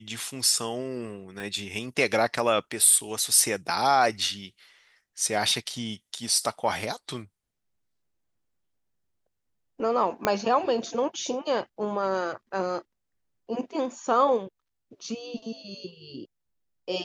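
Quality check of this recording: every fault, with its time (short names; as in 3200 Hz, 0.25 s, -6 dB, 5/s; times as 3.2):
1.4 pop
10.25 pop -8 dBFS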